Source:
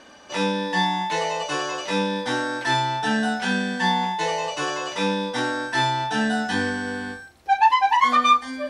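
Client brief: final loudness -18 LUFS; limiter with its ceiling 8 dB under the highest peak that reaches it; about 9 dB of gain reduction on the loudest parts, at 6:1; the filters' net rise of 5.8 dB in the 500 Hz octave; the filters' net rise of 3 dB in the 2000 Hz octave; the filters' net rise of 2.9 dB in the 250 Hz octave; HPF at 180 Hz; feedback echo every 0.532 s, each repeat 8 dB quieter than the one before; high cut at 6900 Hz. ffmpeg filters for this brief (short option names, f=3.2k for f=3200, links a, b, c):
-af "highpass=180,lowpass=6.9k,equalizer=f=250:t=o:g=4,equalizer=f=500:t=o:g=5.5,equalizer=f=2k:t=o:g=3.5,acompressor=threshold=-20dB:ratio=6,alimiter=limit=-20dB:level=0:latency=1,aecho=1:1:532|1064|1596|2128|2660:0.398|0.159|0.0637|0.0255|0.0102,volume=9.5dB"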